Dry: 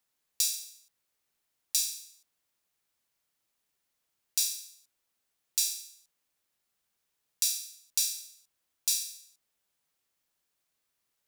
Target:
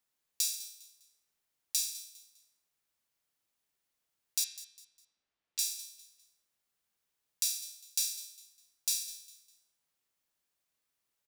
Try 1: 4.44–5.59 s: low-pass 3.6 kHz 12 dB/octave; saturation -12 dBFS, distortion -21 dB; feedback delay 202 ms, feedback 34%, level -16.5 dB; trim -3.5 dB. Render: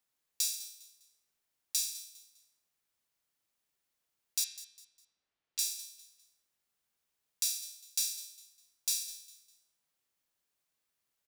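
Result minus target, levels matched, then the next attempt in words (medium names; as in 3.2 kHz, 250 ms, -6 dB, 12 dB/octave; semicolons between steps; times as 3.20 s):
saturation: distortion +19 dB
4.44–5.59 s: low-pass 3.6 kHz 12 dB/octave; saturation 0 dBFS, distortion -40 dB; feedback delay 202 ms, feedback 34%, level -16.5 dB; trim -3.5 dB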